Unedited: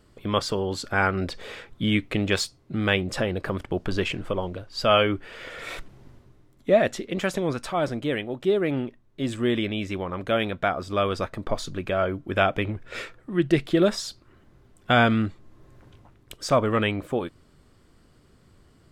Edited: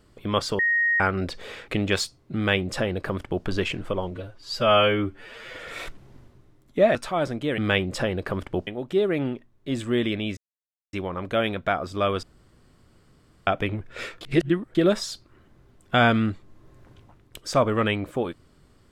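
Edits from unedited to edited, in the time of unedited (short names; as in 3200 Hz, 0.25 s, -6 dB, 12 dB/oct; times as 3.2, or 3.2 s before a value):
0.59–1 bleep 1870 Hz -18.5 dBFS
1.68–2.08 cut
2.76–3.85 copy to 8.19
4.51–5.49 stretch 1.5×
6.86–7.56 cut
9.89 insert silence 0.56 s
11.19–12.43 room tone
13.17–13.71 reverse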